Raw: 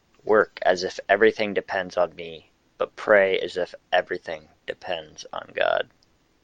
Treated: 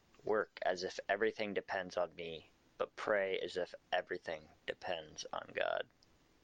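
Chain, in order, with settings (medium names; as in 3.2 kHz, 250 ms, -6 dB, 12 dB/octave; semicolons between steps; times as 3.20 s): compression 2:1, threshold -34 dBFS, peak gain reduction 12.5 dB; trim -6 dB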